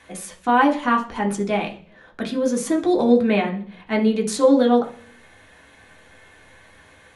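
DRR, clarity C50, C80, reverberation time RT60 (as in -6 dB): 0.0 dB, 12.0 dB, 17.5 dB, 0.45 s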